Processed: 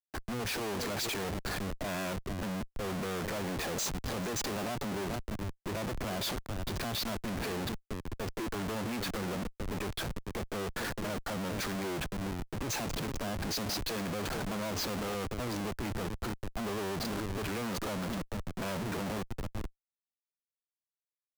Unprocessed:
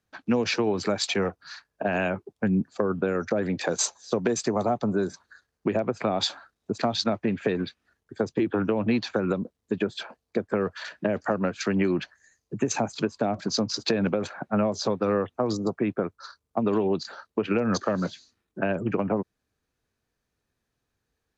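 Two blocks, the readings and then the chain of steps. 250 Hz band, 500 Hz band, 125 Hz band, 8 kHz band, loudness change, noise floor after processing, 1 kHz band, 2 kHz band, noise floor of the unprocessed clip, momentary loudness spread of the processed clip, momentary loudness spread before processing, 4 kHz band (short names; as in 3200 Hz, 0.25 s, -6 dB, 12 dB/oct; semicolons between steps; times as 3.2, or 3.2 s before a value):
-10.0 dB, -11.5 dB, -5.0 dB, -5.0 dB, -8.5 dB, under -85 dBFS, -6.5 dB, -5.0 dB, -81 dBFS, 5 LU, 7 LU, -5.0 dB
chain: echo 0.445 s -17 dB; Schmitt trigger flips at -38 dBFS; three-band expander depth 40%; gain -7 dB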